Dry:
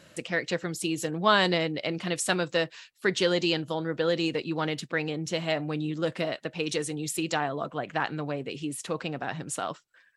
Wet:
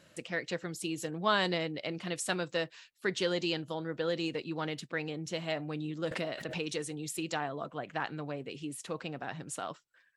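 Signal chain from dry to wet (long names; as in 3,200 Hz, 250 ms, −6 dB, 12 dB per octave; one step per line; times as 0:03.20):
0:06.11–0:06.68: background raised ahead of every attack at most 52 dB per second
level −6.5 dB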